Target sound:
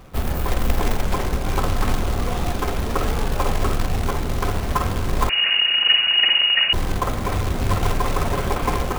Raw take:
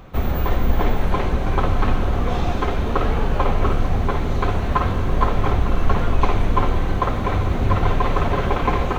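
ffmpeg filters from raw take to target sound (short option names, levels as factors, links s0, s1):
-filter_complex "[0:a]acrusher=bits=3:mode=log:mix=0:aa=0.000001,asettb=1/sr,asplit=3[s0][s1][s2];[s0]atrim=end=5.294[s3];[s1]atrim=start=5.29:end=6.73,asetpts=PTS-STARTPTS,afade=t=in:d=0.004:c=qsin,afade=t=out:st=1.436:d=0.004:c=qsin,lowpass=f=2500:t=q:w=0.5098,lowpass=f=2500:t=q:w=0.6013,lowpass=f=2500:t=q:w=0.9,lowpass=f=2500:t=q:w=2.563,afreqshift=-2900[s4];[s2]atrim=start=6.726[s5];[s3][s4]acrossfade=d=0.004:c1=hsin:c2=qsin[s6];[s6][s5]acrossfade=d=0.004:c1=qsin:c2=hsin,volume=0.75"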